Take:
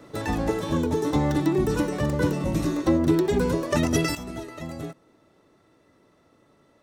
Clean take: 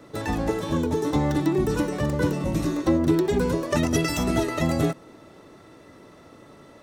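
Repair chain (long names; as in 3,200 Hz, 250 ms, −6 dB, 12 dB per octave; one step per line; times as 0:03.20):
level correction +12 dB, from 0:04.15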